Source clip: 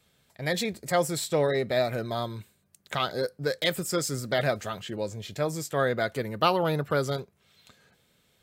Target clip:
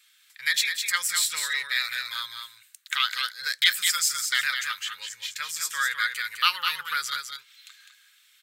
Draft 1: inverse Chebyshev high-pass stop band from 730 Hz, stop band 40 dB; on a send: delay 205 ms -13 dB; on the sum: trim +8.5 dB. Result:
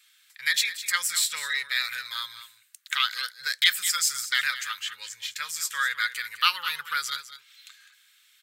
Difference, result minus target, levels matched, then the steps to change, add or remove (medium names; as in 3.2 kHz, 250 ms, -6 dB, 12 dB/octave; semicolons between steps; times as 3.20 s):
echo-to-direct -7 dB
change: delay 205 ms -6 dB